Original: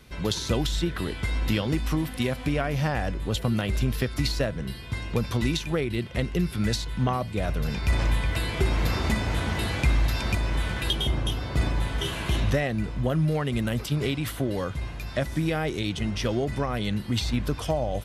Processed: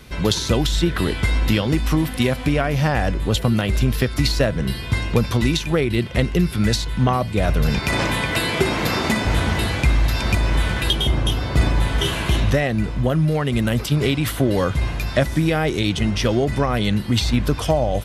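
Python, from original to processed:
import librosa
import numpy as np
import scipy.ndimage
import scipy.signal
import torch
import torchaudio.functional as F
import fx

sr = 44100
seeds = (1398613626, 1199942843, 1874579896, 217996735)

y = fx.highpass(x, sr, hz=160.0, slope=12, at=(7.79, 9.25))
y = fx.rider(y, sr, range_db=4, speed_s=0.5)
y = y * librosa.db_to_amplitude(7.5)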